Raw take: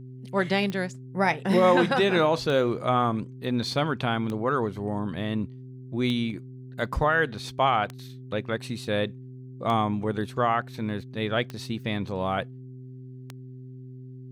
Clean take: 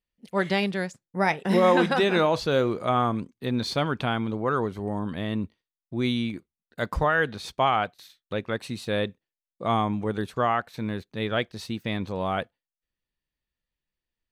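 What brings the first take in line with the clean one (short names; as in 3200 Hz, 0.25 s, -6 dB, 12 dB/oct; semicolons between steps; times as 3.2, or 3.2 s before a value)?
de-click; de-hum 128.2 Hz, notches 3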